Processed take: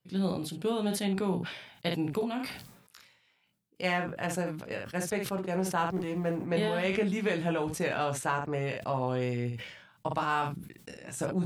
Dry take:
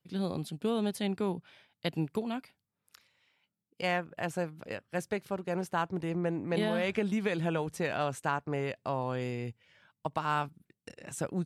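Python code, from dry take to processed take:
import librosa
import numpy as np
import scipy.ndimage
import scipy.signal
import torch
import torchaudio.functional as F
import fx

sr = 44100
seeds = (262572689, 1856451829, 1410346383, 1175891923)

y = fx.law_mismatch(x, sr, coded='A', at=(5.86, 6.46))
y = fx.room_early_taps(y, sr, ms=(16, 58), db=(-4.5, -11.0))
y = fx.sustainer(y, sr, db_per_s=67.0)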